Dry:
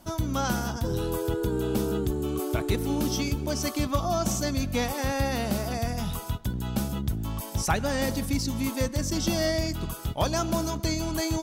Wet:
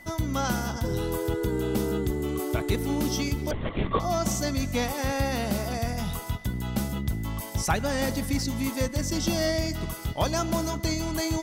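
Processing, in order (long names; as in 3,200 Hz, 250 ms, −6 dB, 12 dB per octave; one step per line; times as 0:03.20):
feedback echo with a high-pass in the loop 337 ms, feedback 46%, level −18.5 dB
steady tone 2,000 Hz −47 dBFS
0:03.51–0:04.00: linear-prediction vocoder at 8 kHz whisper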